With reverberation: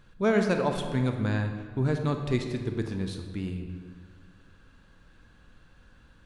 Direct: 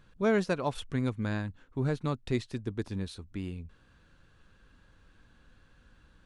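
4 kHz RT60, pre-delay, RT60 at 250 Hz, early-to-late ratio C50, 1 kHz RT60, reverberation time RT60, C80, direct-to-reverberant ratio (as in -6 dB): 1.1 s, 26 ms, 2.2 s, 5.5 dB, 1.7 s, 1.8 s, 7.5 dB, 4.5 dB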